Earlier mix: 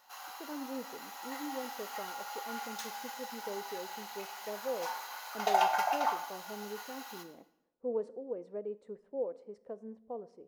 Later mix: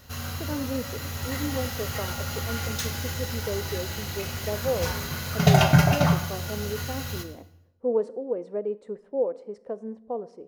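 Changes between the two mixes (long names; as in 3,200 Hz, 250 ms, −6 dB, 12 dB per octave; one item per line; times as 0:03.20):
speech +10.0 dB
background: remove four-pole ladder high-pass 780 Hz, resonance 75%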